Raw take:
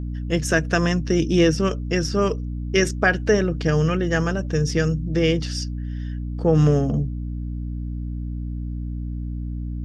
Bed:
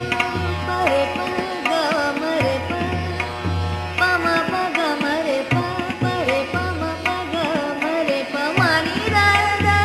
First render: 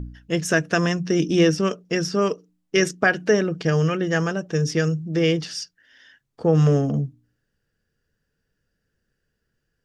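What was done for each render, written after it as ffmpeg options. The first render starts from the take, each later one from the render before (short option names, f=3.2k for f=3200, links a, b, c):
-af "bandreject=f=60:t=h:w=4,bandreject=f=120:t=h:w=4,bandreject=f=180:t=h:w=4,bandreject=f=240:t=h:w=4,bandreject=f=300:t=h:w=4"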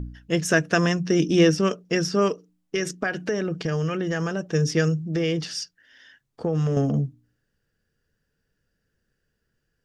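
-filter_complex "[0:a]asettb=1/sr,asplit=3[a][b][c];[a]atrim=end=2.284[d];[b]atrim=start=2.28:end=4.4,asetpts=PTS-STARTPTS,afade=t=in:d=0.004:c=qsin,afade=t=out:st=2.116:d=0.004:c=qsin,acompressor=threshold=-22dB:ratio=4:attack=3.2:release=140:knee=1:detection=peak[e];[c]atrim=start=4.396[f];[d][e]acrossfade=d=0.004:c1=hsin:c2=qsin[g];[g][f]acrossfade=d=0.004:c1=qsin:c2=hsin,asettb=1/sr,asplit=3[h][i][j];[h]atrim=end=4.994[k];[i]atrim=start=4.99:end=6.77,asetpts=PTS-STARTPTS,afade=t=in:d=0.004:c=qsin,afade=t=out:st=1.776:d=0.004:c=qsin,acompressor=threshold=-20dB:ratio=6:attack=3.2:release=140:knee=1:detection=peak[l];[j]atrim=start=6.766[m];[k][l]acrossfade=d=0.004:c1=hsin:c2=qsin[n];[n][m]acrossfade=d=0.004:c1=qsin:c2=hsin"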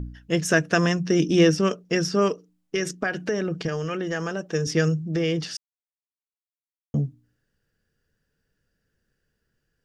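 -filter_complex "[0:a]asettb=1/sr,asplit=3[a][b][c];[a]atrim=end=3.684[d];[b]atrim=start=3.68:end=4.67,asetpts=PTS-STARTPTS,afade=t=in:d=0.004:c=qsin,afade=t=out:st=0.986:d=0.004:c=qsin,equalizer=f=94:t=o:w=1.5:g=-11[e];[c]atrim=start=4.666[f];[d][e]acrossfade=d=0.004:c1=hsin:c2=qsin[g];[g][f]acrossfade=d=0.004:c1=qsin:c2=hsin,asplit=3[h][i][j];[h]atrim=end=5.57,asetpts=PTS-STARTPTS,afade=t=out:st=5.566:d=0.004:c=hsin[k];[i]atrim=start=5.57:end=6.94,asetpts=PTS-STARTPTS,volume=0[l];[j]atrim=start=6.94,asetpts=PTS-STARTPTS,afade=t=in:d=0.004:c=hsin[m];[k][l][m]concat=n=3:v=0:a=1"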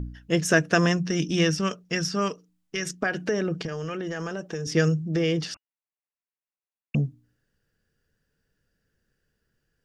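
-filter_complex "[0:a]asettb=1/sr,asplit=3[a][b][c];[a]atrim=end=1.104[d];[b]atrim=start=1.1:end=3.02,asetpts=PTS-STARTPTS,afade=t=in:d=0.004:c=qsin,afade=t=out:st=1.916:d=0.004:c=qsin,equalizer=f=400:w=0.82:g=-8.5[e];[c]atrim=start=3.016[f];[d][e]acrossfade=d=0.004:c1=hsin:c2=qsin[g];[g][f]acrossfade=d=0.004:c1=qsin:c2=hsin,asettb=1/sr,asplit=3[h][i][j];[h]atrim=end=3.644[k];[i]atrim=start=3.64:end=4.72,asetpts=PTS-STARTPTS,afade=t=in:d=0.004:c=qsin,afade=t=out:st=1.076:d=0.004:c=qsin,acompressor=threshold=-27dB:ratio=6:attack=3.2:release=140:knee=1:detection=peak[l];[j]atrim=start=4.716[m];[k][l]acrossfade=d=0.004:c1=hsin:c2=qsin[n];[n][m]acrossfade=d=0.004:c1=qsin:c2=hsin,asettb=1/sr,asplit=3[o][p][q];[o]atrim=end=5.544[r];[p]atrim=start=5.54:end=6.95,asetpts=PTS-STARTPTS,afade=t=in:d=0.004:c=qsin,afade=t=out:st=1.406:d=0.004:c=qsin,lowpass=f=2.5k:t=q:w=0.5098,lowpass=f=2.5k:t=q:w=0.6013,lowpass=f=2.5k:t=q:w=0.9,lowpass=f=2.5k:t=q:w=2.563,afreqshift=-2900[s];[q]atrim=start=6.946[t];[r][s]acrossfade=d=0.004:c1=hsin:c2=qsin[u];[u][t]acrossfade=d=0.004:c1=qsin:c2=hsin"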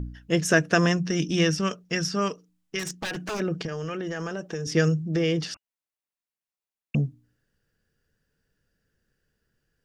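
-filter_complex "[0:a]asettb=1/sr,asplit=3[a][b][c];[a]atrim=end=2.794[d];[b]atrim=start=2.79:end=3.4,asetpts=PTS-STARTPTS,afade=t=in:d=0.004:c=qsin,afade=t=out:st=0.606:d=0.004:c=qsin,aeval=exprs='0.0531*(abs(mod(val(0)/0.0531+3,4)-2)-1)':c=same[e];[c]atrim=start=3.396[f];[d][e]acrossfade=d=0.004:c1=hsin:c2=qsin[g];[g][f]acrossfade=d=0.004:c1=qsin:c2=hsin"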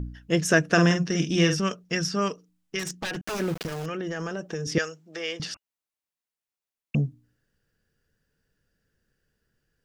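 -filter_complex "[0:a]asettb=1/sr,asplit=3[a][b][c];[a]atrim=end=0.654[d];[b]atrim=start=0.65:end=1.6,asetpts=PTS-STARTPTS,afade=t=in:d=0.004:c=qsin,afade=t=out:st=0.946:d=0.004:c=qsin,asplit=2[e][f];[f]adelay=47,volume=-7dB[g];[e][g]amix=inputs=2:normalize=0,atrim=end_sample=41895[h];[c]atrim=start=1.596[i];[d][h]acrossfade=d=0.004:c1=hsin:c2=qsin[j];[j][i]acrossfade=d=0.004:c1=qsin:c2=hsin,asettb=1/sr,asplit=3[k][l][m];[k]atrim=end=3.214[n];[l]atrim=start=3.21:end=3.86,asetpts=PTS-STARTPTS,afade=t=in:d=0.004:c=qsin,afade=t=out:st=0.646:d=0.004:c=qsin,aeval=exprs='val(0)*gte(abs(val(0)),0.0211)':c=same[o];[m]atrim=start=3.856[p];[n][o]acrossfade=d=0.004:c1=hsin:c2=qsin[q];[q][p]acrossfade=d=0.004:c1=qsin:c2=hsin,asettb=1/sr,asplit=3[r][s][t];[r]atrim=end=4.784[u];[s]atrim=start=4.78:end=5.4,asetpts=PTS-STARTPTS,afade=t=in:d=0.004:c=qsin,afade=t=out:st=0.616:d=0.004:c=qsin,highpass=750[v];[t]atrim=start=5.396[w];[u][v]acrossfade=d=0.004:c1=hsin:c2=qsin[x];[x][w]acrossfade=d=0.004:c1=qsin:c2=hsin"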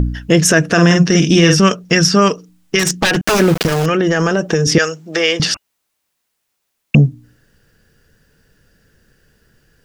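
-filter_complex "[0:a]asplit=2[a][b];[b]acompressor=threshold=-33dB:ratio=6,volume=1dB[c];[a][c]amix=inputs=2:normalize=0,alimiter=level_in=13dB:limit=-1dB:release=50:level=0:latency=1"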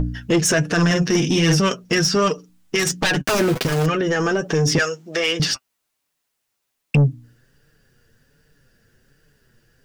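-af "flanger=delay=6.4:depth=2.4:regen=37:speed=1.3:shape=triangular,asoftclip=type=tanh:threshold=-10.5dB"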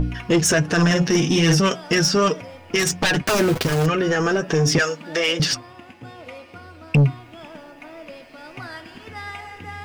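-filter_complex "[1:a]volume=-19dB[a];[0:a][a]amix=inputs=2:normalize=0"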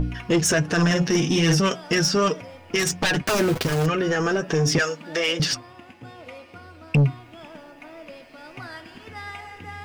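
-af "volume=-2.5dB"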